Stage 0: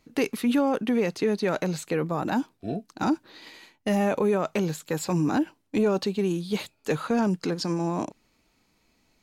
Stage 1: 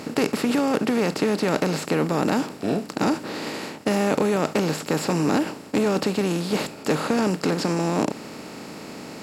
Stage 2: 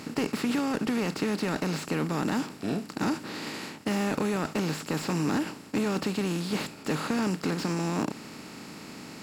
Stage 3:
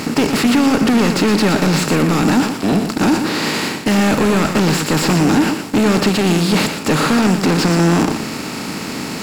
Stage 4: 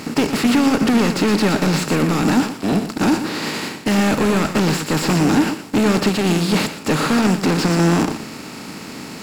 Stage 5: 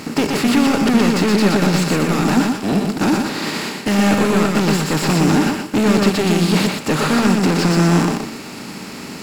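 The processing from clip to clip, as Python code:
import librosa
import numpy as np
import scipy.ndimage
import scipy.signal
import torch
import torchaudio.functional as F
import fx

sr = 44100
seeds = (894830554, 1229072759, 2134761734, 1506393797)

y1 = fx.bin_compress(x, sr, power=0.4)
y1 = scipy.signal.sosfilt(scipy.signal.butter(2, 50.0, 'highpass', fs=sr, output='sos'), y1)
y1 = y1 * 10.0 ** (-2.0 / 20.0)
y2 = fx.peak_eq(y1, sr, hz=550.0, db=-7.5, octaves=1.2)
y2 = fx.slew_limit(y2, sr, full_power_hz=130.0)
y2 = y2 * 10.0 ** (-3.5 / 20.0)
y3 = fx.leveller(y2, sr, passes=3)
y3 = y3 + 10.0 ** (-8.0 / 20.0) * np.pad(y3, (int(118 * sr / 1000.0), 0))[:len(y3)]
y3 = y3 * 10.0 ** (6.5 / 20.0)
y4 = fx.upward_expand(y3, sr, threshold_db=-24.0, expansion=1.5)
y4 = y4 * 10.0 ** (-1.0 / 20.0)
y5 = y4 + 10.0 ** (-4.5 / 20.0) * np.pad(y4, (int(123 * sr / 1000.0), 0))[:len(y4)]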